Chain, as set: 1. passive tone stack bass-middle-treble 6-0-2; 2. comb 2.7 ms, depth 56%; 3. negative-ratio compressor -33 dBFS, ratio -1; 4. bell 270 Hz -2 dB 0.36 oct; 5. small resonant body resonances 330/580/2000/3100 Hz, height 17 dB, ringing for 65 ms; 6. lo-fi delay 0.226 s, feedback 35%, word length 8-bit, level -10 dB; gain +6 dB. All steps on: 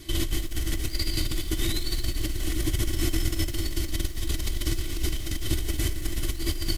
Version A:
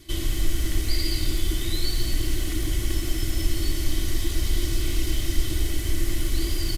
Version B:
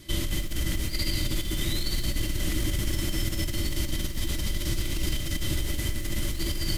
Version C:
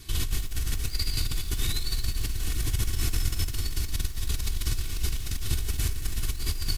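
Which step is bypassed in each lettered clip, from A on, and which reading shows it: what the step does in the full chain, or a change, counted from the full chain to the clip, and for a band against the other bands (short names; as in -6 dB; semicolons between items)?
3, crest factor change -2.0 dB; 2, 2 kHz band +1.5 dB; 5, 250 Hz band -8.5 dB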